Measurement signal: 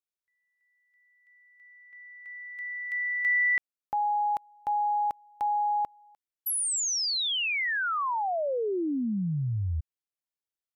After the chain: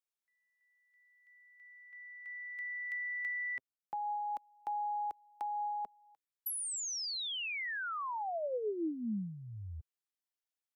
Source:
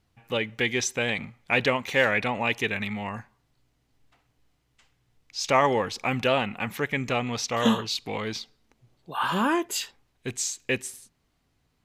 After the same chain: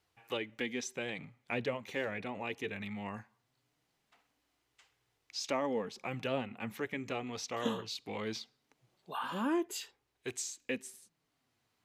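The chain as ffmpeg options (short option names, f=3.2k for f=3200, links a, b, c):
-filter_complex "[0:a]highpass=f=220:p=1,acrossover=split=510[a][b];[a]flanger=delay=2.3:depth=8.9:regen=15:speed=0.2:shape=sinusoidal[c];[b]acompressor=threshold=-35dB:ratio=6:attack=36:release=913:knee=6:detection=rms[d];[c][d]amix=inputs=2:normalize=0,volume=-2.5dB"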